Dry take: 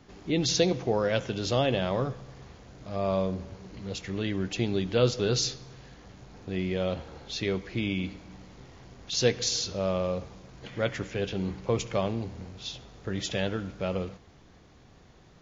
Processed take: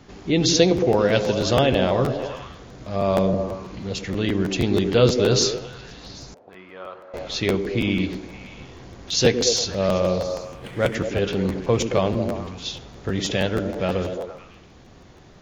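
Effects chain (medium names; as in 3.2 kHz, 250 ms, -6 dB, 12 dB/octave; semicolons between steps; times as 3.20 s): 10.24–10.95 s: median filter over 9 samples; repeats whose band climbs or falls 112 ms, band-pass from 290 Hz, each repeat 0.7 oct, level -3 dB; 6.34–7.14 s: auto-wah 490–1200 Hz, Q 3.4, up, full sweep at -32.5 dBFS; crackling interface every 0.16 s, samples 512, repeat, from 0.76 s; trim +7 dB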